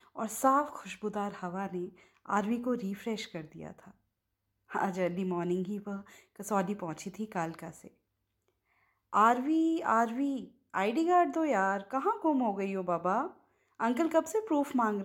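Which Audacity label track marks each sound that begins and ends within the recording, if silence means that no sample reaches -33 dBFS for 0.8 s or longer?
4.750000	7.690000	sound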